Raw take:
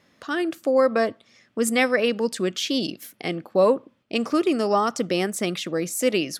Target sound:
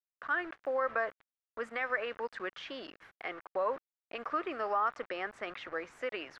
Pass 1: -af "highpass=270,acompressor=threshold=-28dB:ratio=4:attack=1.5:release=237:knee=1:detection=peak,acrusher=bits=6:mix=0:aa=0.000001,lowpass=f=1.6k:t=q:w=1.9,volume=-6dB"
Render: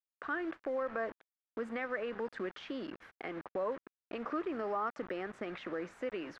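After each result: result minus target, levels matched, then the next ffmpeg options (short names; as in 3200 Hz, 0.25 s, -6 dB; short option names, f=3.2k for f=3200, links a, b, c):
250 Hz band +9.0 dB; compressor: peak gain reduction +5.5 dB
-af "highpass=720,acompressor=threshold=-28dB:ratio=4:attack=1.5:release=237:knee=1:detection=peak,acrusher=bits=6:mix=0:aa=0.000001,lowpass=f=1.6k:t=q:w=1.9,volume=-6dB"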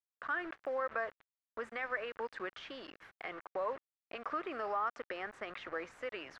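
compressor: peak gain reduction +4.5 dB
-af "highpass=720,acompressor=threshold=-22dB:ratio=4:attack=1.5:release=237:knee=1:detection=peak,acrusher=bits=6:mix=0:aa=0.000001,lowpass=f=1.6k:t=q:w=1.9,volume=-6dB"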